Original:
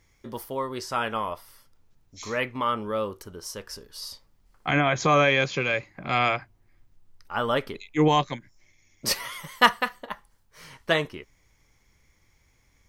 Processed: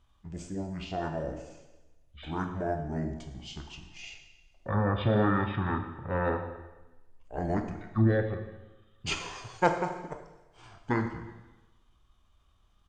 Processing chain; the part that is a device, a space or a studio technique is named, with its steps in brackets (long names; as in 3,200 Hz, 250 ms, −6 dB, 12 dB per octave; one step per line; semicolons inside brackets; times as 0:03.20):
parametric band 99 Hz +2 dB 0.3 octaves
monster voice (pitch shifter −5.5 semitones; formants moved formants −5 semitones; low-shelf EQ 140 Hz +7.5 dB; convolution reverb RT60 1.1 s, pre-delay 17 ms, DRR 5.5 dB)
level −7 dB